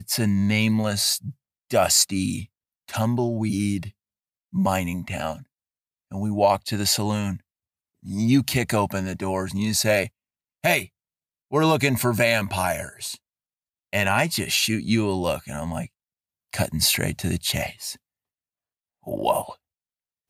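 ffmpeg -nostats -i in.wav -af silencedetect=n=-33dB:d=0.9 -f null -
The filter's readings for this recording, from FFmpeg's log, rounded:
silence_start: 17.93
silence_end: 19.07 | silence_duration: 1.13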